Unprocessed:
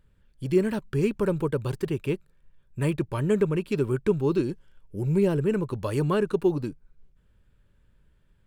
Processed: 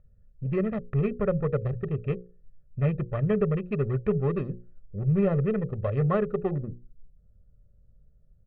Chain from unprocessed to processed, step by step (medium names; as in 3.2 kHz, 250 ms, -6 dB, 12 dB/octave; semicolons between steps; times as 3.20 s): local Wiener filter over 41 samples; low-pass 2.4 kHz 24 dB/octave, from 6.60 s 1.4 kHz; hum notches 60/120/180/240/300/360/420/480/540 Hz; comb 1.6 ms, depth 82%